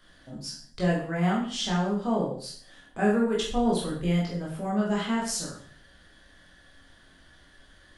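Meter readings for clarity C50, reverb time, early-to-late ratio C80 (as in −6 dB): 4.5 dB, 0.50 s, 9.0 dB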